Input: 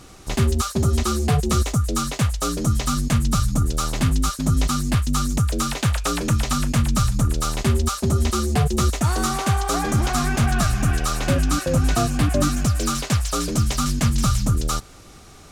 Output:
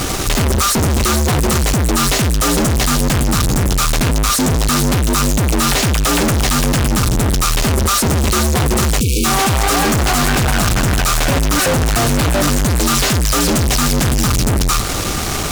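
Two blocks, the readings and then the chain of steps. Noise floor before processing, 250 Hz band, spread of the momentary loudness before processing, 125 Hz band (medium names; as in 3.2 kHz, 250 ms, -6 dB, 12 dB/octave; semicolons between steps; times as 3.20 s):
-44 dBFS, +6.0 dB, 3 LU, +4.0 dB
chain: fuzz box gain 49 dB, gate -47 dBFS; spectral selection erased 9.00–9.25 s, 530–2200 Hz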